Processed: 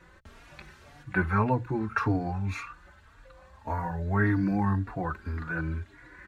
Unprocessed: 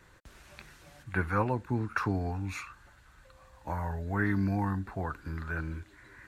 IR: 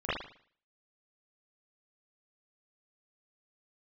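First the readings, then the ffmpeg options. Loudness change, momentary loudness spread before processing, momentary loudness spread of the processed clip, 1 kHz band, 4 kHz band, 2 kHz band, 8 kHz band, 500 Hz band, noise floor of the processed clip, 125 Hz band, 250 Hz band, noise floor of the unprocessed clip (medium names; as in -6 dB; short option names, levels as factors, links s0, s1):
+3.5 dB, 22 LU, 19 LU, +3.5 dB, 0.0 dB, +3.0 dB, no reading, +3.0 dB, -56 dBFS, +3.5 dB, +4.0 dB, -59 dBFS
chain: -filter_complex "[0:a]lowpass=f=3300:p=1,bandreject=f=60:t=h:w=6,bandreject=f=120:t=h:w=6,asplit=2[s0][s1];[s1]adelay=3.6,afreqshift=1.8[s2];[s0][s2]amix=inputs=2:normalize=1,volume=2.24"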